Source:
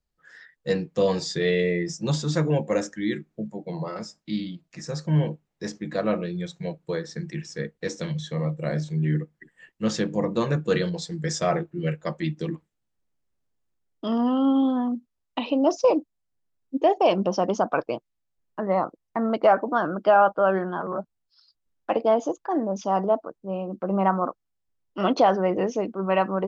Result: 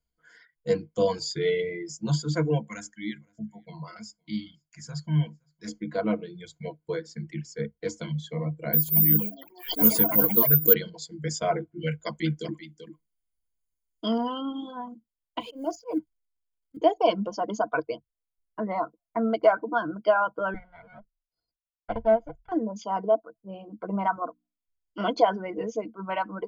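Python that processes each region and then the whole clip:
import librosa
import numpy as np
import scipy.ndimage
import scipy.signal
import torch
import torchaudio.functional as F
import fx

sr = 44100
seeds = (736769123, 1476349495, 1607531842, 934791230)

y = fx.chain(x, sr, fx.peak_eq(hz=450.0, db=-14.0, octaves=1.3),
    fx.echo_single(ms=516, db=-22.5), at=(2.67, 5.68))
y = fx.chain(y, sr, fx.resample_bad(factor=3, down='none', up='zero_stuff'),
    fx.echo_pitch(ms=231, semitones=5, count=3, db_per_echo=-6.0),
    fx.pre_swell(db_per_s=90.0), at=(8.73, 10.74))
y = fx.chain(y, sr, fx.high_shelf(hz=2200.0, db=8.0),
    fx.echo_single(ms=387, db=-8.5), at=(11.81, 14.41))
y = fx.chain(y, sr, fx.law_mismatch(coded='mu'),
    fx.level_steps(step_db=12),
    fx.auto_swell(attack_ms=120.0), at=(15.4, 16.77))
y = fx.chain(y, sr, fx.lower_of_two(delay_ms=1.4),
    fx.air_absorb(metres=380.0),
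    fx.upward_expand(threshold_db=-32.0, expansion=1.5), at=(20.54, 22.52))
y = fx.chain(y, sr, fx.resample_bad(factor=3, down='none', up='filtered'),
    fx.hum_notches(base_hz=60, count=5), at=(24.16, 25.21))
y = fx.dereverb_blind(y, sr, rt60_s=2.0)
y = fx.ripple_eq(y, sr, per_octave=1.8, db=13)
y = y * 10.0 ** (-4.5 / 20.0)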